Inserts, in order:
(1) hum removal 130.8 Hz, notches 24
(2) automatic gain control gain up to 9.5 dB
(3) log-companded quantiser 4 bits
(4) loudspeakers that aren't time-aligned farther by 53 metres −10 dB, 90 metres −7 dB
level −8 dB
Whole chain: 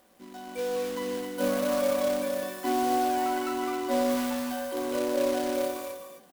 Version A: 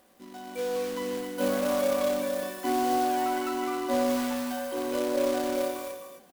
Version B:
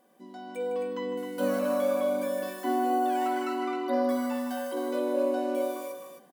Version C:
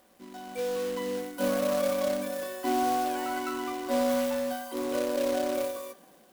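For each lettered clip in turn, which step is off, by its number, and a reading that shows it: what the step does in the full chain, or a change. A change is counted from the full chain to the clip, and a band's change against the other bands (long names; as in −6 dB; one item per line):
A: 1, change in crest factor +2.5 dB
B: 3, distortion level −14 dB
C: 4, echo-to-direct ratio −5.0 dB to none audible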